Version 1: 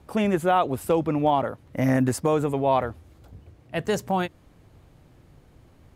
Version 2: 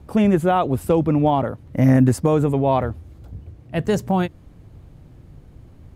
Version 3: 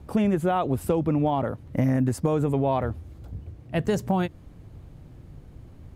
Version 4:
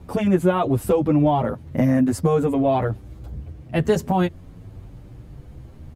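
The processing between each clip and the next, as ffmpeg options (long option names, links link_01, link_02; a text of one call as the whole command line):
ffmpeg -i in.wav -af "lowshelf=frequency=330:gain=11" out.wav
ffmpeg -i in.wav -af "acompressor=threshold=-19dB:ratio=4,volume=-1dB" out.wav
ffmpeg -i in.wav -filter_complex "[0:a]asplit=2[link_01][link_02];[link_02]adelay=8.8,afreqshift=0.46[link_03];[link_01][link_03]amix=inputs=2:normalize=1,volume=7.5dB" out.wav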